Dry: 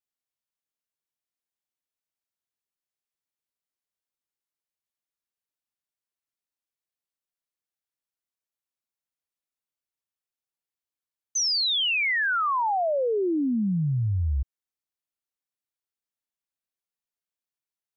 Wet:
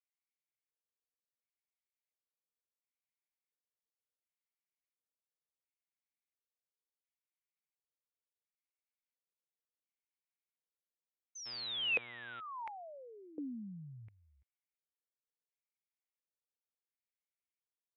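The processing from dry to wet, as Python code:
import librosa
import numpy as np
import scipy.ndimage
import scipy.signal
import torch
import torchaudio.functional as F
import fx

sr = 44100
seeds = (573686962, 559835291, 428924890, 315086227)

y = fx.filter_lfo_bandpass(x, sr, shape='square', hz=0.71, low_hz=480.0, high_hz=2200.0, q=6.8)
y = fx.dmg_buzz(y, sr, base_hz=120.0, harmonics=32, level_db=-56.0, tilt_db=-1, odd_only=False, at=(11.45, 12.39), fade=0.02)
y = y * 10.0 ** (1.5 / 20.0)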